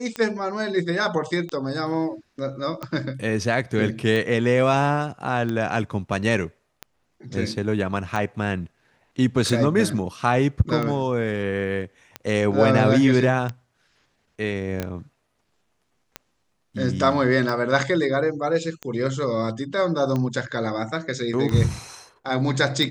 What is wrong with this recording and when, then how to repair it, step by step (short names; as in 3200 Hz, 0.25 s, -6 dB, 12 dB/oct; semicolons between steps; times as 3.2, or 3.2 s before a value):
tick 45 rpm -15 dBFS
14.8 pop -13 dBFS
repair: de-click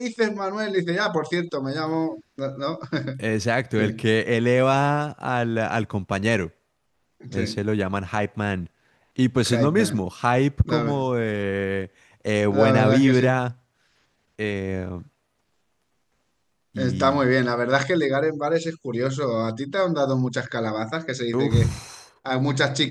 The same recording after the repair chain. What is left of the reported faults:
none